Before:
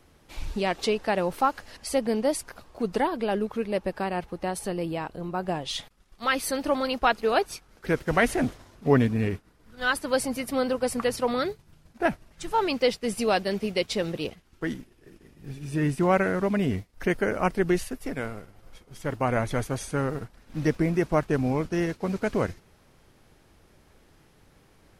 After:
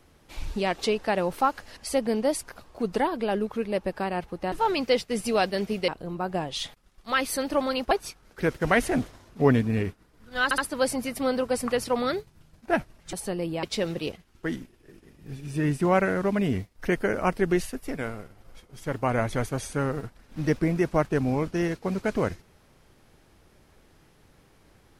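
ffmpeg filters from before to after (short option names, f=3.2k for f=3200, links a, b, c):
-filter_complex "[0:a]asplit=8[a][b][c][d][e][f][g][h];[a]atrim=end=4.522[i];[b]atrim=start=12.448:end=13.812[j];[c]atrim=start=5.018:end=7.052[k];[d]atrim=start=7.368:end=9.972[l];[e]atrim=start=9.898:end=9.972[m];[f]atrim=start=9.898:end=12.452[n];[g]atrim=start=4.518:end=5.022[o];[h]atrim=start=13.808[p];[i][j]acrossfade=d=0.004:c1=hsin:c2=hsin[q];[q][k]acrossfade=d=0.004:c1=hsin:c2=hsin[r];[r][l]acrossfade=d=0.004:c1=hsin:c2=hsin[s];[s][m]acrossfade=d=0.004:c1=hsin:c2=hsin[t];[t][n]acrossfade=d=0.004:c1=hsin:c2=hsin[u];[u][o]acrossfade=d=0.004:c1=hsin:c2=hsin[v];[v][p]acrossfade=d=0.004:c1=hsin:c2=hsin"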